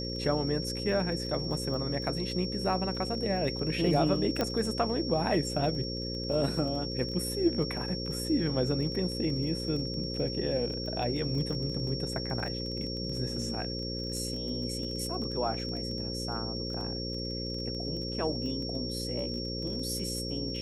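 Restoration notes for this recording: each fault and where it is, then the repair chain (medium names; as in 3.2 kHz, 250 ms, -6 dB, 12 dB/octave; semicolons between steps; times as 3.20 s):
buzz 60 Hz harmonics 9 -37 dBFS
crackle 20 per s -37 dBFS
whine 5.5 kHz -37 dBFS
4.41 s: pop -14 dBFS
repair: de-click; de-hum 60 Hz, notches 9; band-stop 5.5 kHz, Q 30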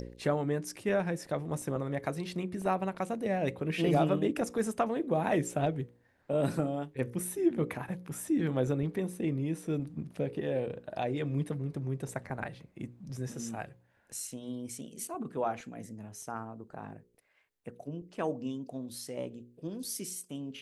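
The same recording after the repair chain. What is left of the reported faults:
nothing left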